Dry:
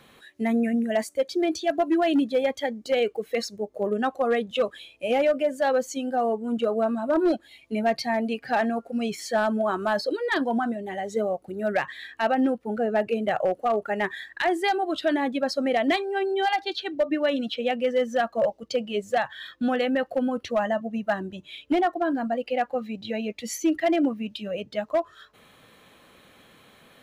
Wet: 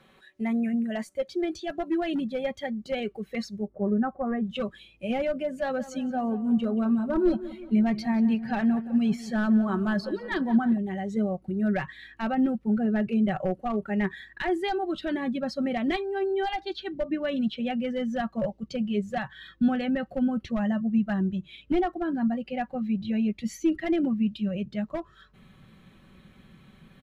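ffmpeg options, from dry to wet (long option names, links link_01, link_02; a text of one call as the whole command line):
ffmpeg -i in.wav -filter_complex "[0:a]asettb=1/sr,asplit=3[link_01][link_02][link_03];[link_01]atrim=end=3.674[link_04];[link_02]atrim=start=3.67:end=4.44,asetpts=PTS-STARTPTS,afade=type=in:duration=0.004:curve=qsin,afade=type=out:start_time=0.766:duration=0.004:curve=qsin,lowpass=frequency=1600:width=0.5412,lowpass=frequency=1600:width=1.3066[link_05];[link_03]atrim=start=4.436[link_06];[link_04][link_05]acrossfade=duration=0.004:curve1=hsin:curve2=qsin[link_07];[link_07][link_06]acrossfade=duration=0.004:curve1=qsin:curve2=hsin,asettb=1/sr,asplit=3[link_08][link_09][link_10];[link_08]atrim=end=5.354[link_11];[link_09]atrim=start=5.35:end=10.78,asetpts=PTS-STARTPTS,afade=type=in:duration=0.004:curve=qsin,afade=type=out:start_time=5.426:duration=0.004:curve=qsin,asplit=2[link_12][link_13];[link_13]adelay=178,lowpass=frequency=3400:poles=1,volume=-15dB,asplit=2[link_14][link_15];[link_15]adelay=178,lowpass=frequency=3400:poles=1,volume=0.53,asplit=2[link_16][link_17];[link_17]adelay=178,lowpass=frequency=3400:poles=1,volume=0.53,asplit=2[link_18][link_19];[link_19]adelay=178,lowpass=frequency=3400:poles=1,volume=0.53,asplit=2[link_20][link_21];[link_21]adelay=178,lowpass=frequency=3400:poles=1,volume=0.53[link_22];[link_12][link_14][link_16][link_18][link_20][link_22]amix=inputs=6:normalize=0,atrim=end_sample=239463[link_23];[link_10]atrim=start=10.776[link_24];[link_11][link_23]acrossfade=duration=0.004:curve1=hsin:curve2=qsin[link_25];[link_25][link_24]acrossfade=duration=0.004:curve1=qsin:curve2=hsin,aemphasis=mode=reproduction:type=cd,aecho=1:1:5.3:0.49,asubboost=boost=7.5:cutoff=190,volume=-5dB" out.wav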